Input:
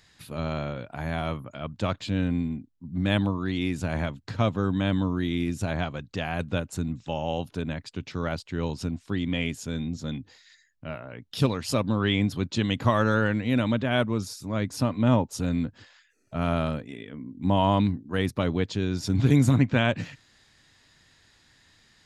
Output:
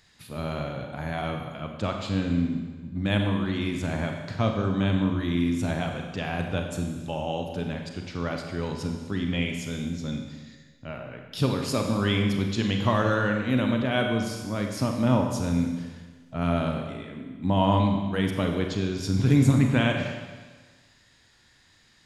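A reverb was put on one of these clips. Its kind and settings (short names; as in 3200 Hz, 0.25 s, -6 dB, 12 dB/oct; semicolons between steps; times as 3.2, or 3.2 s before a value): Schroeder reverb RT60 1.4 s, combs from 31 ms, DRR 3 dB; gain -1.5 dB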